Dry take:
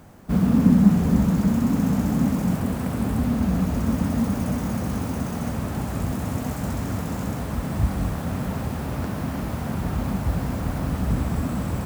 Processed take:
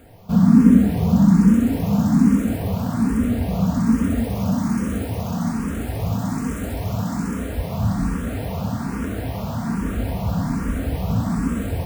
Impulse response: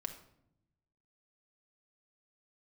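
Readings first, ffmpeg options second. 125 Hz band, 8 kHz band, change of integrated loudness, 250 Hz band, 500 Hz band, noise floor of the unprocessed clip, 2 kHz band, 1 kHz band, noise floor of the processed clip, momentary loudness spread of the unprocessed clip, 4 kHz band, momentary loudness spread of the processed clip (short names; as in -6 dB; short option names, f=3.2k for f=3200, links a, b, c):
+2.0 dB, +1.0 dB, +3.5 dB, +4.0 dB, +2.0 dB, -30 dBFS, +1.5 dB, +1.5 dB, -28 dBFS, 9 LU, +1.5 dB, 12 LU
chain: -filter_complex "[1:a]atrim=start_sample=2205[a];[0:a][a]afir=irnorm=-1:irlink=0,asplit=2[b][c];[c]afreqshift=1.2[d];[b][d]amix=inputs=2:normalize=1,volume=6dB"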